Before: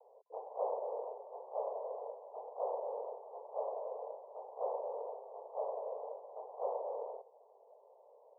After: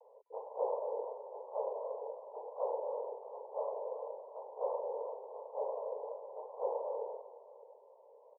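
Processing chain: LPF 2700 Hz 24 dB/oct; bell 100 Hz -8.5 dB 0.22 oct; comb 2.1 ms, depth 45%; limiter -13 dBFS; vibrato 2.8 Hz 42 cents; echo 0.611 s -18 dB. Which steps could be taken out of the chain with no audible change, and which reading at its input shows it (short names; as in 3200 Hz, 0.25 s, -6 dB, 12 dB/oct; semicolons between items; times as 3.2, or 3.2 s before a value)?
LPF 2700 Hz: input band ends at 1200 Hz; bell 100 Hz: input band starts at 360 Hz; limiter -13 dBFS: input peak -22.0 dBFS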